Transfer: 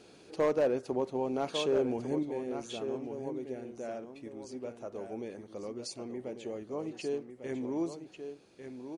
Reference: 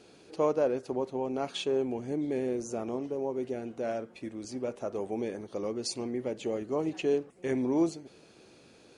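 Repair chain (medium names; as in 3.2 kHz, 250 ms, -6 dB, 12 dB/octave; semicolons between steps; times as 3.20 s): clip repair -21.5 dBFS; inverse comb 1148 ms -8.5 dB; gain correction +7 dB, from 2.23 s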